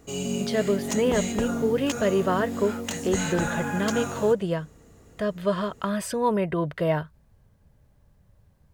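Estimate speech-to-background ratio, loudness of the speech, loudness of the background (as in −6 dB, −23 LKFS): 3.5 dB, −26.5 LKFS, −30.0 LKFS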